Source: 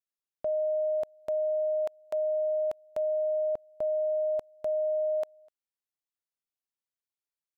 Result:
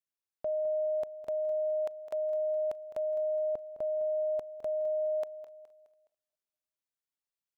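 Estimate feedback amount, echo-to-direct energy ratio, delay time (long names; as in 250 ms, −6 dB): repeats not evenly spaced, −12.5 dB, 209 ms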